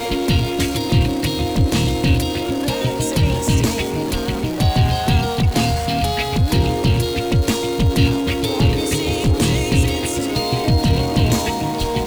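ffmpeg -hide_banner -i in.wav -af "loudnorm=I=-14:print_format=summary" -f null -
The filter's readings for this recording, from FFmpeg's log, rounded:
Input Integrated:    -18.4 LUFS
Input True Peak:      -4.3 dBTP
Input LRA:             0.9 LU
Input Threshold:     -28.4 LUFS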